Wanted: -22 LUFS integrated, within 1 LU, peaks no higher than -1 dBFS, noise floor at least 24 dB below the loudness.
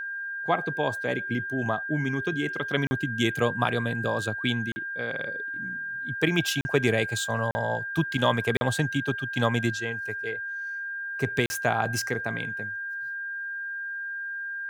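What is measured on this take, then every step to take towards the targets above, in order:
dropouts 6; longest dropout 40 ms; steady tone 1.6 kHz; tone level -31 dBFS; loudness -28.0 LUFS; peak level -8.5 dBFS; loudness target -22.0 LUFS
-> interpolate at 2.87/4.72/6.61/7.51/8.57/11.46 s, 40 ms; band-stop 1.6 kHz, Q 30; trim +6 dB

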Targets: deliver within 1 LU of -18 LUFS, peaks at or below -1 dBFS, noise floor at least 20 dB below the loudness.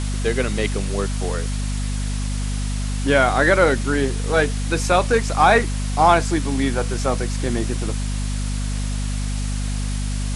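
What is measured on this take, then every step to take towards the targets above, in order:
hum 50 Hz; highest harmonic 250 Hz; hum level -21 dBFS; noise floor -24 dBFS; noise floor target -41 dBFS; loudness -21.0 LUFS; peak level -1.5 dBFS; loudness target -18.0 LUFS
-> de-hum 50 Hz, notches 5; noise print and reduce 17 dB; trim +3 dB; peak limiter -1 dBFS

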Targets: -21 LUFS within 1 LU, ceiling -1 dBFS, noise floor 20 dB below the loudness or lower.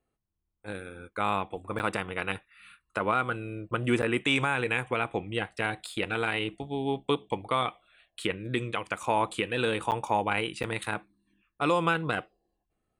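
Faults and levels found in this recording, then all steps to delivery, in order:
dropouts 4; longest dropout 8.8 ms; loudness -30.0 LUFS; peak level -13.0 dBFS; loudness target -21.0 LUFS
-> interpolate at 1.79/4.02/9.91/10.63 s, 8.8 ms; trim +9 dB

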